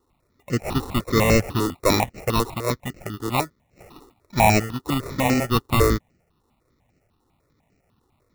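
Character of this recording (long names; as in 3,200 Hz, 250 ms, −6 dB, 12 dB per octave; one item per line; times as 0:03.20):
aliases and images of a low sample rate 1,600 Hz, jitter 0%
notches that jump at a steady rate 10 Hz 630–3,500 Hz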